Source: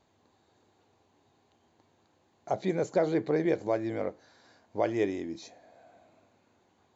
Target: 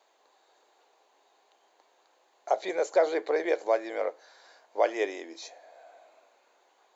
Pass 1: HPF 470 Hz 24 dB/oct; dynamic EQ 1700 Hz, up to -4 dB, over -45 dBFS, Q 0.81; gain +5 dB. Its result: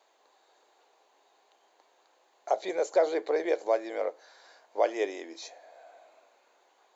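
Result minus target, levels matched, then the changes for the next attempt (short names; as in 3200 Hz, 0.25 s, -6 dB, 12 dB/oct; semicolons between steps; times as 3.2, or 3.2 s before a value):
2000 Hz band -2.5 dB
remove: dynamic EQ 1700 Hz, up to -4 dB, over -45 dBFS, Q 0.81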